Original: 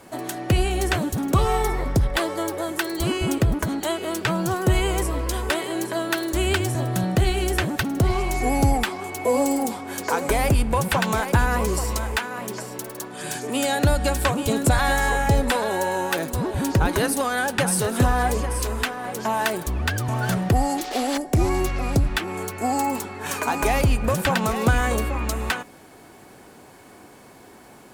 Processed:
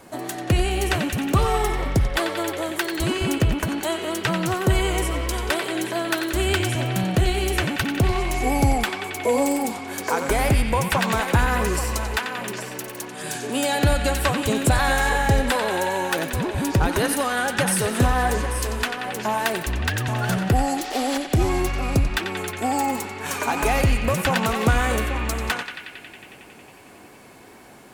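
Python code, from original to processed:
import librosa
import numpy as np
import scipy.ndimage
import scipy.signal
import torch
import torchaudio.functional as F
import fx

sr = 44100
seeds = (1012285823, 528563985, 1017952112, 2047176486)

p1 = fx.wow_flutter(x, sr, seeds[0], rate_hz=2.1, depth_cents=42.0)
y = p1 + fx.echo_banded(p1, sr, ms=91, feedback_pct=85, hz=2500.0, wet_db=-6.0, dry=0)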